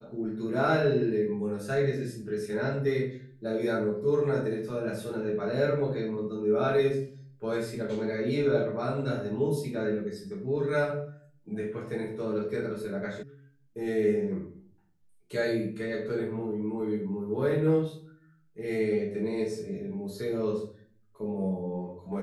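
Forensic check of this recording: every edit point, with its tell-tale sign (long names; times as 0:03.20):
0:13.23: cut off before it has died away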